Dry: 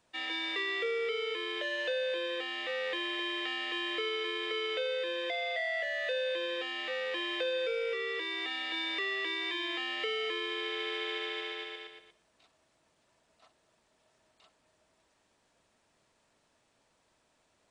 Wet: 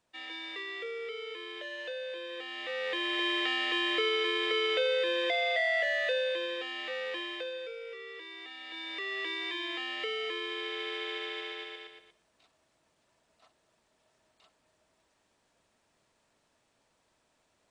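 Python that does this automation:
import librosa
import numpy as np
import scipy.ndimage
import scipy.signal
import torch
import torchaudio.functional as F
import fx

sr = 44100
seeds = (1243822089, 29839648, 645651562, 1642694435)

y = fx.gain(x, sr, db=fx.line((2.26, -6.0), (3.26, 5.0), (5.89, 5.0), (6.59, -1.0), (7.1, -1.0), (7.77, -9.5), (8.56, -9.5), (9.2, -1.0)))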